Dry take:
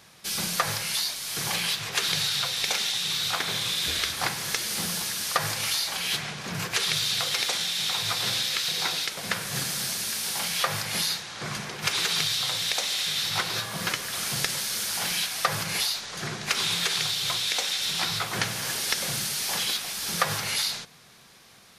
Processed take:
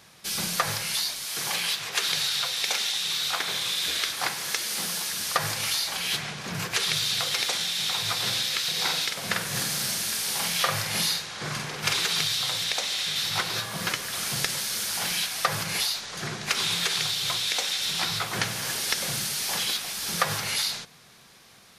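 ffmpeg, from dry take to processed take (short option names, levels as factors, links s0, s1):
-filter_complex "[0:a]asettb=1/sr,asplit=3[s0][s1][s2];[s0]atrim=end=1.254[s3];[s1]atrim=start=1.25:end=5.13,asetpts=PTS-STARTPTS,afade=t=in:d=0.004:c=qsin,afade=t=out:st=3.876:d=0.004:c=qsin,highpass=f=340:p=1[s4];[s2]atrim=start=5.126[s5];[s3][s4]acrossfade=d=0.004:c1=hsin:c2=qsin[s6];[s6][s5]acrossfade=d=0.004:c1=qsin:c2=hsin,asettb=1/sr,asplit=3[s7][s8][s9];[s7]atrim=end=8.724[s10];[s8]atrim=start=8.72:end=11.97,asetpts=PTS-STARTPTS,afade=t=in:d=0.004:c=qsin,afade=t=out:st=3.246:d=0.004:c=qsin,asplit=2[s11][s12];[s12]adelay=47,volume=0.631[s13];[s11][s13]amix=inputs=2:normalize=0,atrim=end_sample=143325[s14];[s9]atrim=start=11.966[s15];[s10][s14]acrossfade=d=0.004:c1=hsin:c2=qsin[s16];[s16][s15]acrossfade=d=0.004:c1=qsin:c2=hsin,asettb=1/sr,asplit=3[s17][s18][s19];[s17]atrim=end=12.644[s20];[s18]atrim=start=12.64:end=13.16,asetpts=PTS-STARTPTS,afade=t=in:d=0.004:c=qsin,afade=t=out:st=0.516:d=0.004:c=qsin,highshelf=f=11000:g=-7.5[s21];[s19]atrim=start=13.156[s22];[s20][s21]acrossfade=d=0.004:c1=hsin:c2=qsin[s23];[s23][s22]acrossfade=d=0.004:c1=qsin:c2=hsin"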